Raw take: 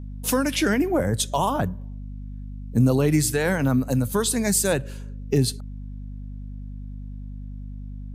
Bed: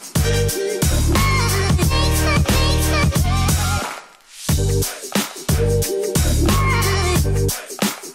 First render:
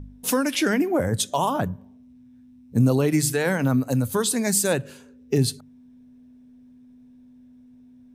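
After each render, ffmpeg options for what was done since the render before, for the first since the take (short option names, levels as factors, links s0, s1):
-af "bandreject=f=50:t=h:w=4,bandreject=f=100:t=h:w=4,bandreject=f=150:t=h:w=4,bandreject=f=200:t=h:w=4"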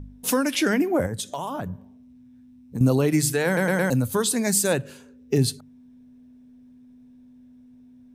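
-filter_complex "[0:a]asettb=1/sr,asplit=3[s0][s1][s2];[s0]atrim=end=1.064[s3];[s1]atrim=start=1.06:end=2.81,asetpts=PTS-STARTPTS,afade=t=in:d=0.004:c=qsin,afade=t=out:st=1.746:d=0.004:c=qsin,acompressor=threshold=0.0447:ratio=4:attack=3.2:release=140:knee=1:detection=peak[s4];[s2]atrim=start=2.806[s5];[s3][s4]acrossfade=d=0.004:c1=hsin:c2=qsin[s6];[s6][s5]acrossfade=d=0.004:c1=qsin:c2=hsin,asplit=5[s7][s8][s9][s10][s11];[s7]atrim=end=3.572[s12];[s8]atrim=start=3.458:end=3.572[s13];[s9]atrim=start=3.458:end=3.572[s14];[s10]atrim=start=3.458:end=3.572[s15];[s11]atrim=start=3.898[s16];[s12][s13]acrossfade=d=0.004:c1=hsin:c2=hsin[s17];[s17][s14]acrossfade=d=0.004:c1=hsin:c2=hsin[s18];[s18][s15]acrossfade=d=0.004:c1=hsin:c2=hsin[s19];[s19][s16]acrossfade=d=0.004:c1=hsin:c2=hsin"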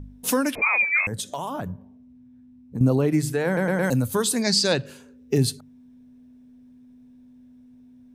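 -filter_complex "[0:a]asettb=1/sr,asplit=3[s0][s1][s2];[s0]atrim=end=0.554[s3];[s1]atrim=start=0.55:end=1.07,asetpts=PTS-STARTPTS,afade=t=in:d=0.004:c=qsin,afade=t=out:st=0.516:d=0.004:c=qsin,lowpass=f=2300:t=q:w=0.5098,lowpass=f=2300:t=q:w=0.6013,lowpass=f=2300:t=q:w=0.9,lowpass=f=2300:t=q:w=2.563,afreqshift=-2700[s4];[s2]atrim=start=1.066[s5];[s3][s4]acrossfade=d=0.004:c1=hsin:c2=qsin[s6];[s6][s5]acrossfade=d=0.004:c1=qsin:c2=hsin,asplit=3[s7][s8][s9];[s7]afade=t=out:st=1.71:d=0.02[s10];[s8]highshelf=f=2300:g=-10,afade=t=in:st=1.71:d=0.02,afade=t=out:st=3.82:d=0.02[s11];[s9]afade=t=in:st=3.82:d=0.02[s12];[s10][s11][s12]amix=inputs=3:normalize=0,asettb=1/sr,asplit=3[s13][s14][s15];[s13]atrim=end=4.424[s16];[s14]atrim=start=4.42:end=4.86,asetpts=PTS-STARTPTS,afade=t=in:d=0.004:c=qsin,afade=t=out:st=0.436:d=0.004:c=qsin,lowpass=f=4700:t=q:w=6.4[s17];[s15]atrim=start=4.856[s18];[s16][s17]acrossfade=d=0.004:c1=hsin:c2=qsin[s19];[s19][s18]acrossfade=d=0.004:c1=qsin:c2=hsin"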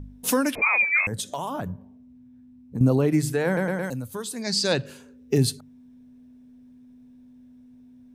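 -filter_complex "[0:a]asplit=3[s0][s1][s2];[s0]atrim=end=3.95,asetpts=PTS-STARTPTS,afade=t=out:st=3.51:d=0.44:silence=0.316228[s3];[s1]atrim=start=3.95:end=4.36,asetpts=PTS-STARTPTS,volume=0.316[s4];[s2]atrim=start=4.36,asetpts=PTS-STARTPTS,afade=t=in:d=0.44:silence=0.316228[s5];[s3][s4][s5]concat=n=3:v=0:a=1"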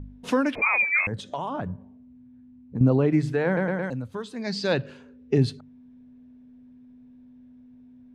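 -af "lowpass=3000"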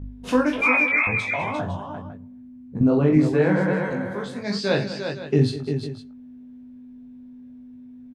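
-filter_complex "[0:a]asplit=2[s0][s1];[s1]adelay=20,volume=0.708[s2];[s0][s2]amix=inputs=2:normalize=0,aecho=1:1:43|88|200|349|505:0.376|0.119|0.2|0.447|0.188"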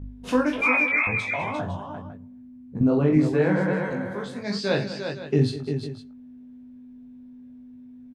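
-af "volume=0.794"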